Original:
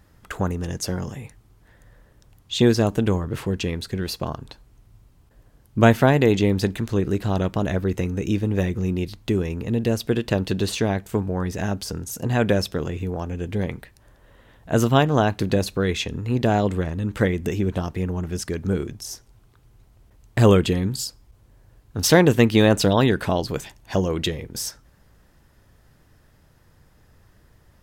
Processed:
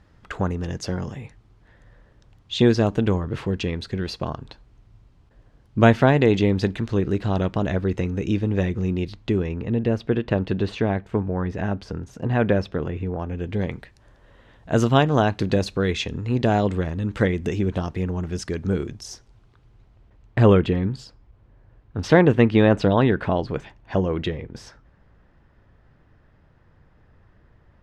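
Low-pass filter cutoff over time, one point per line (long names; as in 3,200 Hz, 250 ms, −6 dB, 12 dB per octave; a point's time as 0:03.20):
0:09.10 4,700 Hz
0:09.85 2,400 Hz
0:13.17 2,400 Hz
0:13.72 6,000 Hz
0:19.05 6,000 Hz
0:20.59 2,400 Hz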